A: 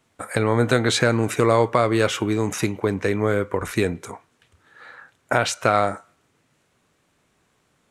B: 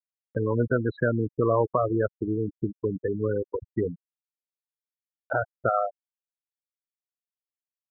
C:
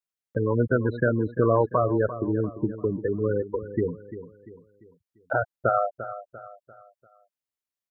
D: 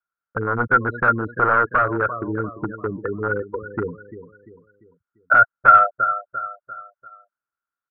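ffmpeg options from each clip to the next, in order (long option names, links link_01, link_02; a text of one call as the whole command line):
ffmpeg -i in.wav -af "afftfilt=real='re*gte(hypot(re,im),0.316)':imag='im*gte(hypot(re,im),0.316)':win_size=1024:overlap=0.75,lowpass=frequency=2200:width=0.5412,lowpass=frequency=2200:width=1.3066,acompressor=mode=upward:threshold=-42dB:ratio=2.5,volume=-4.5dB" out.wav
ffmpeg -i in.wav -af "aecho=1:1:345|690|1035|1380:0.224|0.0918|0.0376|0.0154,volume=1.5dB" out.wav
ffmpeg -i in.wav -af "aresample=11025,aeval=exprs='0.141*(abs(mod(val(0)/0.141+3,4)-2)-1)':channel_layout=same,aresample=44100,lowpass=frequency=1400:width_type=q:width=16,volume=-1dB" out.wav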